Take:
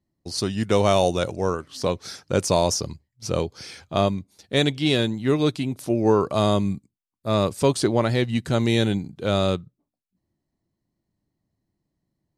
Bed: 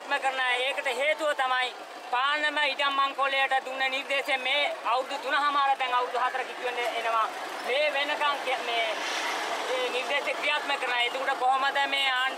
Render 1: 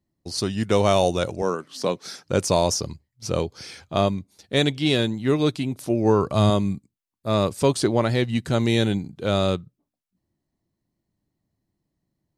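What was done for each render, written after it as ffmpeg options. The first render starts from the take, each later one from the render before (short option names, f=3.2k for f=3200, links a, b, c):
-filter_complex "[0:a]asettb=1/sr,asplit=3[a][b][c];[a]atrim=end=1.424[d];[b]atrim=start=1.42:end=2.25,asetpts=PTS-STARTPTS,afade=t=in:d=0.004:c=qsin,afade=t=out:st=0.826:d=0.004:c=qsin,highpass=f=150:w=0.5412,highpass=f=150:w=1.3066[e];[c]atrim=start=2.246[f];[d][e]acrossfade=d=0.004:c1=hsin:c2=qsin[g];[g][f]acrossfade=d=0.004:c1=qsin:c2=hsin,asettb=1/sr,asplit=3[h][i][j];[h]atrim=end=5.964[k];[i]atrim=start=5.96:end=6.5,asetpts=PTS-STARTPTS,afade=t=in:d=0.004:c=qsin,afade=t=out:st=0.536:d=0.004:c=qsin,asubboost=boost=10:cutoff=240[l];[j]atrim=start=6.496[m];[k][l]acrossfade=d=0.004:c1=hsin:c2=qsin[n];[n][m]acrossfade=d=0.004:c1=qsin:c2=hsin"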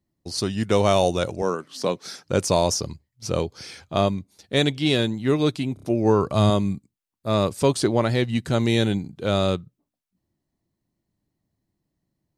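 -filter_complex "[0:a]asplit=5[a][b][c][d][e];[a]atrim=end=5.772[f];[b]atrim=start=5.738:end=5.772[g];[c]atrim=start=5.738:end=5.772[h];[d]atrim=start=5.738:end=5.772[i];[e]atrim=start=5.858[j];[f][g]acrossfade=d=0.004:c1=hsin:c2=hsin[k];[k][h]acrossfade=d=0.004:c1=hsin:c2=hsin[l];[l][i]acrossfade=d=0.004:c1=hsin:c2=hsin[m];[m][j]acrossfade=d=0.004:c1=hsin:c2=hsin"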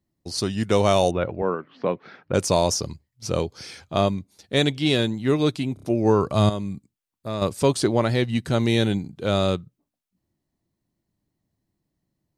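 -filter_complex "[0:a]asettb=1/sr,asplit=3[a][b][c];[a]atrim=end=1.114[d];[b]atrim=start=1.11:end=2.34,asetpts=PTS-STARTPTS,afade=t=in:d=0.004:c=qsin,afade=t=out:st=1.226:d=0.004:c=qsin,lowpass=f=2.5k:w=0.5412,lowpass=f=2.5k:w=1.3066[e];[c]atrim=start=2.336[f];[d][e]acrossfade=d=0.004:c1=hsin:c2=qsin[g];[g][f]acrossfade=d=0.004:c1=qsin:c2=hsin,asettb=1/sr,asplit=3[h][i][j];[h]atrim=end=6.494[k];[i]atrim=start=6.49:end=7.42,asetpts=PTS-STARTPTS,afade=t=in:d=0.004:c=qsin,afade=t=out:st=0.926:d=0.004:c=qsin,acompressor=threshold=-29dB:ratio=2:attack=3.2:release=140:knee=1:detection=peak[l];[j]atrim=start=7.416[m];[k][l]acrossfade=d=0.004:c1=hsin:c2=qsin[n];[n][m]acrossfade=d=0.004:c1=qsin:c2=hsin,asettb=1/sr,asplit=3[o][p][q];[o]atrim=end=8.104[r];[p]atrim=start=8.1:end=8.9,asetpts=PTS-STARTPTS,afade=t=in:d=0.004:c=qsin,afade=t=out:st=0.796:d=0.004:c=qsin,bandreject=f=7.2k:w=12[s];[q]atrim=start=8.896[t];[r][s]acrossfade=d=0.004:c1=hsin:c2=qsin[u];[u][t]acrossfade=d=0.004:c1=qsin:c2=hsin"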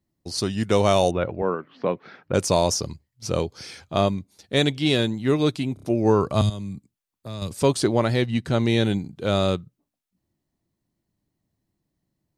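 -filter_complex "[0:a]asettb=1/sr,asplit=3[a][b][c];[a]atrim=end=6.414[d];[b]atrim=start=6.41:end=7.51,asetpts=PTS-STARTPTS,afade=t=in:d=0.004:c=qsin,afade=t=out:st=1.096:d=0.004:c=qsin,acrossover=split=180|3000[e][f][g];[f]acompressor=threshold=-38dB:ratio=3:attack=3.2:release=140:knee=2.83:detection=peak[h];[e][h][g]amix=inputs=3:normalize=0[i];[c]atrim=start=7.506[j];[d][i]acrossfade=d=0.004:c1=hsin:c2=qsin[k];[k][j]acrossfade=d=0.004:c1=qsin:c2=hsin,asettb=1/sr,asplit=3[l][m][n];[l]atrim=end=8.264[o];[m]atrim=start=8.26:end=8.85,asetpts=PTS-STARTPTS,afade=t=in:d=0.004:c=qsin,afade=t=out:st=0.586:d=0.004:c=qsin,highshelf=f=8.5k:g=-9.5[p];[n]atrim=start=8.846[q];[o][p]acrossfade=d=0.004:c1=hsin:c2=qsin[r];[r][q]acrossfade=d=0.004:c1=qsin:c2=hsin"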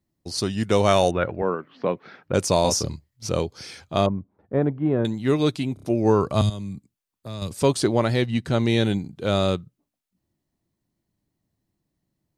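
-filter_complex "[0:a]asettb=1/sr,asplit=3[a][b][c];[a]atrim=end=0.884[d];[b]atrim=start=0.88:end=1.44,asetpts=PTS-STARTPTS,afade=t=in:d=0.004:c=qsin,afade=t=out:st=0.556:d=0.004:c=qsin,equalizer=f=1.6k:w=1.8:g=7[e];[c]atrim=start=1.436[f];[d][e]acrossfade=d=0.004:c1=hsin:c2=qsin[g];[g][f]acrossfade=d=0.004:c1=qsin:c2=hsin,asettb=1/sr,asplit=3[h][i][j];[h]atrim=end=2.624[k];[i]atrim=start=2.62:end=3.29,asetpts=PTS-STARTPTS,afade=t=in:d=0.004:c=qsin,afade=t=out:st=0.666:d=0.004:c=qsin,asplit=2[l][m];[m]adelay=27,volume=-3dB[n];[l][n]amix=inputs=2:normalize=0,atrim=end_sample=29547[o];[j]atrim=start=3.286[p];[k][o]acrossfade=d=0.004:c1=hsin:c2=qsin[q];[q][p]acrossfade=d=0.004:c1=qsin:c2=hsin,asettb=1/sr,asplit=3[r][s][t];[r]atrim=end=4.064[u];[s]atrim=start=4.06:end=5.05,asetpts=PTS-STARTPTS,afade=t=in:d=0.004:c=qsin,afade=t=out:st=0.986:d=0.004:c=qsin,lowpass=f=1.3k:w=0.5412,lowpass=f=1.3k:w=1.3066[v];[t]atrim=start=5.046[w];[u][v]acrossfade=d=0.004:c1=hsin:c2=qsin[x];[x][w]acrossfade=d=0.004:c1=qsin:c2=hsin"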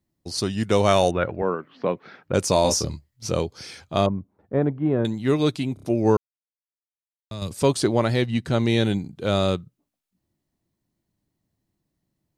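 -filter_complex "[0:a]asettb=1/sr,asplit=3[a][b][c];[a]atrim=end=2.414[d];[b]atrim=start=2.41:end=3.35,asetpts=PTS-STARTPTS,afade=t=in:d=0.004:c=qsin,afade=t=out:st=0.936:d=0.004:c=qsin,asplit=2[e][f];[f]adelay=15,volume=-11dB[g];[e][g]amix=inputs=2:normalize=0,atrim=end_sample=41454[h];[c]atrim=start=3.346[i];[d][h]acrossfade=d=0.004:c1=hsin:c2=qsin[j];[j][i]acrossfade=d=0.004:c1=qsin:c2=hsin,asplit=3[k][l][m];[k]atrim=end=6.17,asetpts=PTS-STARTPTS,afade=t=out:st=6.166:d=0.004:c=hsin[n];[l]atrim=start=6.17:end=7.31,asetpts=PTS-STARTPTS,volume=0[o];[m]atrim=start=7.31,asetpts=PTS-STARTPTS,afade=t=in:d=0.004:c=hsin[p];[n][o][p]concat=n=3:v=0:a=1"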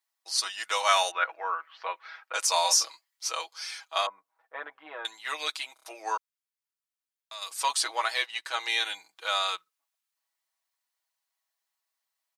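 -af "highpass=f=900:w=0.5412,highpass=f=900:w=1.3066,aecho=1:1:6.2:0.79"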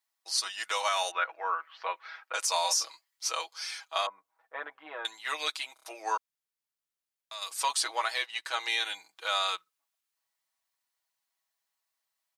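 -af "alimiter=limit=-17dB:level=0:latency=1:release=266"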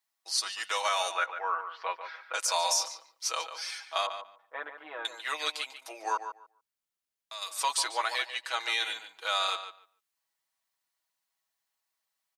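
-filter_complex "[0:a]asplit=2[a][b];[b]adelay=145,lowpass=f=3k:p=1,volume=-9dB,asplit=2[c][d];[d]adelay=145,lowpass=f=3k:p=1,volume=0.17,asplit=2[e][f];[f]adelay=145,lowpass=f=3k:p=1,volume=0.17[g];[a][c][e][g]amix=inputs=4:normalize=0"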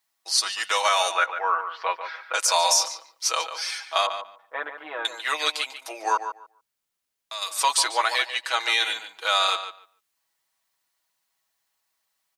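-af "volume=7.5dB"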